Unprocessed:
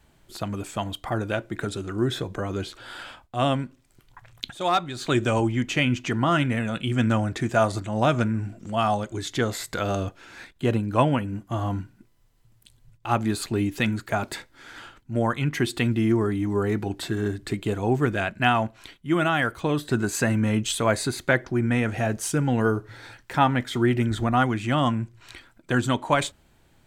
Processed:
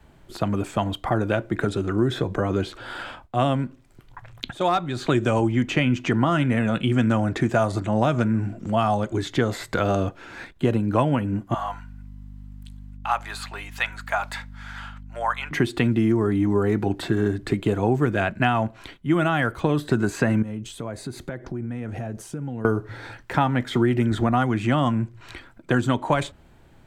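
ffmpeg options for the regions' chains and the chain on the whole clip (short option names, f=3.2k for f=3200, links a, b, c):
-filter_complex "[0:a]asettb=1/sr,asplit=3[a][b][c];[a]atrim=end=11.544[d];[b]atrim=start=11.54:end=15.51,asetpts=PTS-STARTPTS,afade=t=in:d=0.004:c=qsin,afade=t=out:st=3.966:d=0.004:c=qsin,highpass=f=780:w=0.5412,highpass=f=780:w=1.3066,aeval=exprs='val(0)+0.00501*(sin(2*PI*50*n/s)+sin(2*PI*2*50*n/s)/2+sin(2*PI*3*50*n/s)/3+sin(2*PI*4*50*n/s)/4+sin(2*PI*5*50*n/s)/5)':c=same[e];[c]atrim=start=15.506[f];[d][e]acrossfade=d=0.004:c1=hsin:c2=qsin[g];[g][f]acrossfade=d=0.004:c1=qsin:c2=hsin,asettb=1/sr,asplit=3[h][i][j];[h]atrim=end=20.424[k];[i]atrim=start=20.42:end=22.65,asetpts=PTS-STARTPTS,afade=t=in:d=0.004:c=qsin,afade=t=out:st=2.226:d=0.004:c=qsin,equalizer=f=1.8k:t=o:w=2.8:g=-6,acompressor=threshold=-35dB:ratio=8:attack=3.2:release=140:knee=1:detection=peak[l];[j]atrim=start=22.646[m];[k][l]acrossfade=d=0.004:c1=hsin:c2=qsin[n];[n][m]acrossfade=d=0.004:c1=qsin:c2=hsin,highshelf=f=2.8k:g=-10.5,acrossover=split=140|4300[o][p][q];[o]acompressor=threshold=-37dB:ratio=4[r];[p]acompressor=threshold=-26dB:ratio=4[s];[q]acompressor=threshold=-48dB:ratio=4[t];[r][s][t]amix=inputs=3:normalize=0,volume=7.5dB"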